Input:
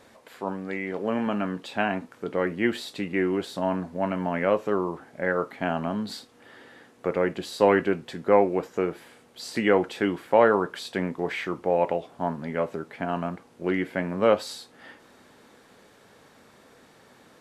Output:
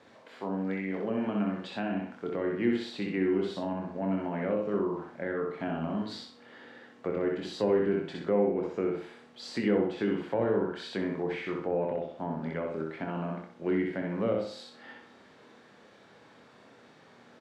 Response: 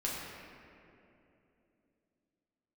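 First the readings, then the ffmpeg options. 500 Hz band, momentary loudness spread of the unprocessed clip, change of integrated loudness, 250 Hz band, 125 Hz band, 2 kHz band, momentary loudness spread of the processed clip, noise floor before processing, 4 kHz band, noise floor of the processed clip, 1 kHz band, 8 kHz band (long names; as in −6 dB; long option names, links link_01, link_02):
−5.5 dB, 12 LU, −5.0 dB, −2.0 dB, −2.5 dB, −9.0 dB, 12 LU, −56 dBFS, −6.0 dB, −57 dBFS, −10.5 dB, below −10 dB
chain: -filter_complex "[0:a]aeval=exprs='0.562*(cos(1*acos(clip(val(0)/0.562,-1,1)))-cos(1*PI/2))+0.0891*(cos(2*acos(clip(val(0)/0.562,-1,1)))-cos(2*PI/2))':channel_layout=same,highpass=100,lowpass=4900,asplit=2[link_01][link_02];[link_02]adelay=25,volume=-6.5dB[link_03];[link_01][link_03]amix=inputs=2:normalize=0,asplit=2[link_04][link_05];[link_05]aecho=0:1:63|126|189|252|315:0.708|0.248|0.0867|0.0304|0.0106[link_06];[link_04][link_06]amix=inputs=2:normalize=0,acrossover=split=440[link_07][link_08];[link_08]acompressor=threshold=-33dB:ratio=5[link_09];[link_07][link_09]amix=inputs=2:normalize=0,volume=-4dB"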